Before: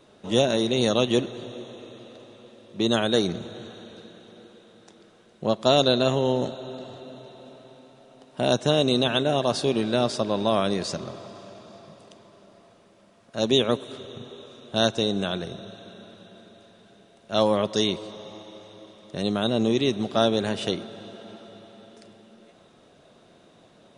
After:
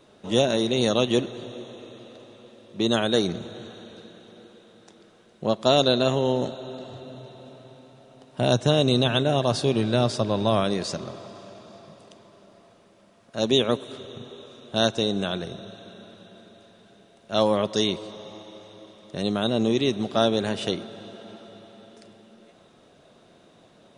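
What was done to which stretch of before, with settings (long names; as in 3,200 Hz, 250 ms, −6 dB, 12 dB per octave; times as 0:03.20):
0:06.92–0:10.64: parametric band 110 Hz +9 dB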